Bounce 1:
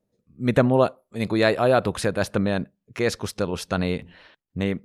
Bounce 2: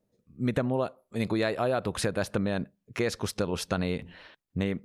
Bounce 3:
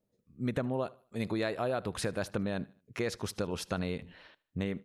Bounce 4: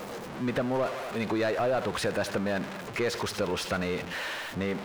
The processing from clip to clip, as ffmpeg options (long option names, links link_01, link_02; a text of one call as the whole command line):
ffmpeg -i in.wav -af "acompressor=threshold=-24dB:ratio=6" out.wav
ffmpeg -i in.wav -af "aecho=1:1:76|152|228:0.0708|0.0276|0.0108,volume=-5dB" out.wav
ffmpeg -i in.wav -filter_complex "[0:a]aeval=exprs='val(0)+0.5*0.0141*sgn(val(0))':channel_layout=same,asplit=2[link_01][link_02];[link_02]highpass=frequency=720:poles=1,volume=17dB,asoftclip=type=tanh:threshold=-18dB[link_03];[link_01][link_03]amix=inputs=2:normalize=0,lowpass=frequency=2300:poles=1,volume=-6dB" out.wav